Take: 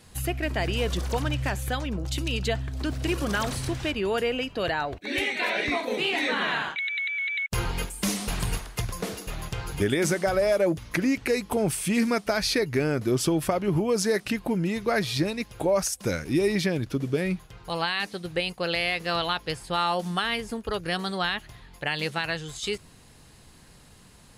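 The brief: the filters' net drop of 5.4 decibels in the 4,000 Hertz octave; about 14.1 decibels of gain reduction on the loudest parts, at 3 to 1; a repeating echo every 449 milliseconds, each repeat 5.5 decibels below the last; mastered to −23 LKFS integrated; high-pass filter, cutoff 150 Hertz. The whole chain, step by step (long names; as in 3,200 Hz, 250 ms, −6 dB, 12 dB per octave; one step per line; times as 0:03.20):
high-pass filter 150 Hz
parametric band 4,000 Hz −7.5 dB
downward compressor 3 to 1, threshold −40 dBFS
repeating echo 449 ms, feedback 53%, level −5.5 dB
level +15.5 dB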